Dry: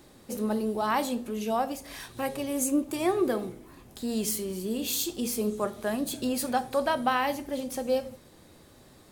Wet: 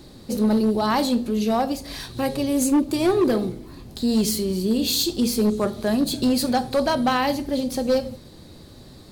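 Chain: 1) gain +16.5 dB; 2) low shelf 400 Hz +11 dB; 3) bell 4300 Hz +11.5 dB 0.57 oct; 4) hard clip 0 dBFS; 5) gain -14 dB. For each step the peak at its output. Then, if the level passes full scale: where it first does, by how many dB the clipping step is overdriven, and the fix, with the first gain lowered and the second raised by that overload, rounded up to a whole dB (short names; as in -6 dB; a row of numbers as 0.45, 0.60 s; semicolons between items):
+2.5, +6.5, +6.5, 0.0, -14.0 dBFS; step 1, 6.5 dB; step 1 +9.5 dB, step 5 -7 dB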